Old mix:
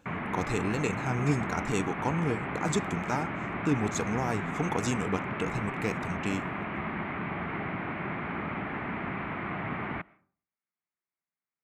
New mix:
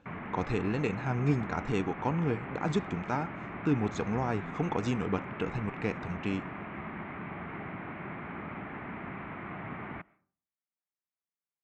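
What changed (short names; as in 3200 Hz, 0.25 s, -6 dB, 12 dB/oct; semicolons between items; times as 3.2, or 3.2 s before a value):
background -5.5 dB; master: add air absorption 170 m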